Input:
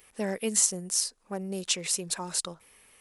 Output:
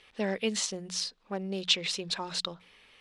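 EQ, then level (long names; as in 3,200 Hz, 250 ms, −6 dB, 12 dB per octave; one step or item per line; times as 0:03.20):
low-pass with resonance 3,700 Hz, resonance Q 2.3
mains-hum notches 60/120/180 Hz
0.0 dB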